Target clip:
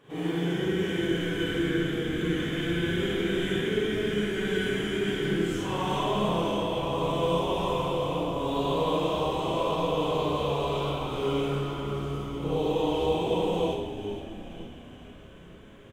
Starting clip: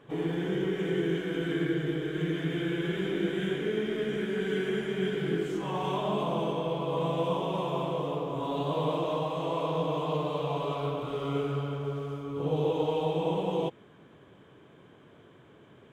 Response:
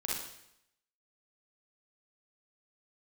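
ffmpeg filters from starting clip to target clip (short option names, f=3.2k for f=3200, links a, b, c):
-filter_complex "[0:a]highshelf=f=3k:g=8,asplit=8[a][b][c][d][e][f][g][h];[b]adelay=464,afreqshift=-81,volume=-11dB[i];[c]adelay=928,afreqshift=-162,volume=-15.6dB[j];[d]adelay=1392,afreqshift=-243,volume=-20.2dB[k];[e]adelay=1856,afreqshift=-324,volume=-24.7dB[l];[f]adelay=2320,afreqshift=-405,volume=-29.3dB[m];[g]adelay=2784,afreqshift=-486,volume=-33.9dB[n];[h]adelay=3248,afreqshift=-567,volume=-38.5dB[o];[a][i][j][k][l][m][n][o]amix=inputs=8:normalize=0[p];[1:a]atrim=start_sample=2205,asetrate=52920,aresample=44100[q];[p][q]afir=irnorm=-1:irlink=0"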